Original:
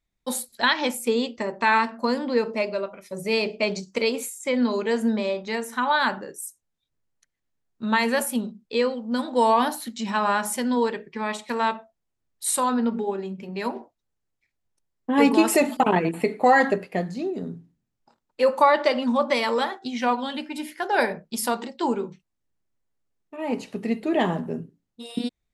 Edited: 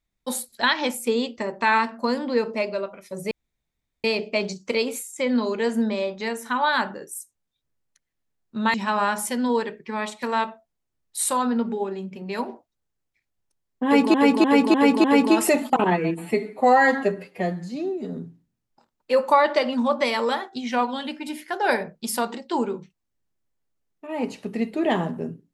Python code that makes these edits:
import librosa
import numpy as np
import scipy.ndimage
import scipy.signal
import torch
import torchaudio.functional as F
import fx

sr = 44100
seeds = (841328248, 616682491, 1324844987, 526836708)

y = fx.edit(x, sr, fx.insert_room_tone(at_s=3.31, length_s=0.73),
    fx.cut(start_s=8.01, length_s=2.0),
    fx.repeat(start_s=15.11, length_s=0.3, count=5),
    fx.stretch_span(start_s=15.91, length_s=1.55, factor=1.5), tone=tone)